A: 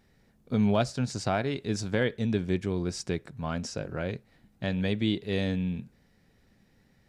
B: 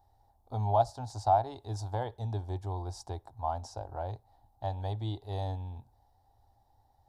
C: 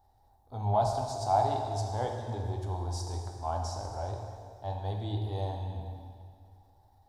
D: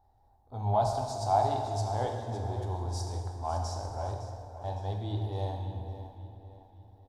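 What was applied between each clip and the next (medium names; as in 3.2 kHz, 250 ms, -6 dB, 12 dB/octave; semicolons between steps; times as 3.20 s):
FFT filter 110 Hz 0 dB, 160 Hz -29 dB, 300 Hz -12 dB, 500 Hz -12 dB, 820 Hz +13 dB, 1.3 kHz -12 dB, 2.4 kHz -26 dB, 3.7 kHz -10 dB, 7.5 kHz -11 dB, 12 kHz -3 dB
transient shaper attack -5 dB, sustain +5 dB; plate-style reverb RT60 2.2 s, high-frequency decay 0.9×, DRR 1 dB
feedback delay 560 ms, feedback 41%, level -12 dB; tape noise reduction on one side only decoder only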